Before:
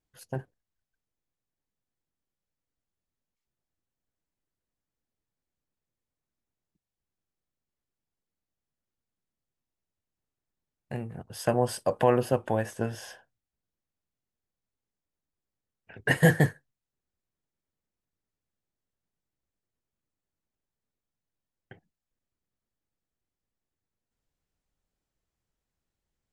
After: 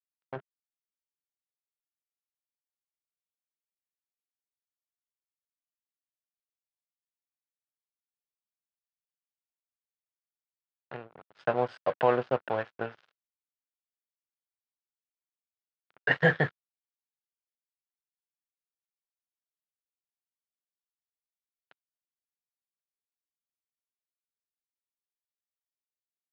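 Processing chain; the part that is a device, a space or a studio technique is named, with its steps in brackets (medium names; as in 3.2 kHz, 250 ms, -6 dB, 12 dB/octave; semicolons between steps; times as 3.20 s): blown loudspeaker (crossover distortion -37 dBFS; cabinet simulation 180–3800 Hz, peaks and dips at 210 Hz -9 dB, 310 Hz -7 dB, 1.4 kHz +7 dB)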